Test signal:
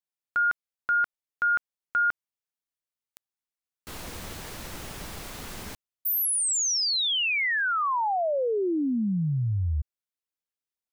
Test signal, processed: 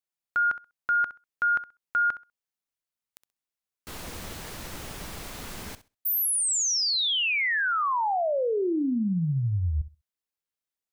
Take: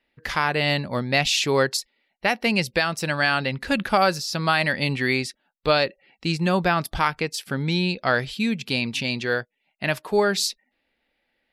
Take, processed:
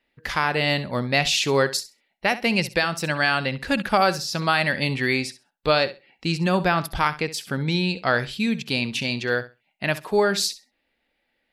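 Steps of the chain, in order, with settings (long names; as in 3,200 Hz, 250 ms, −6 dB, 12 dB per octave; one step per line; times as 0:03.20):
flutter between parallel walls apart 11.2 metres, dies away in 0.26 s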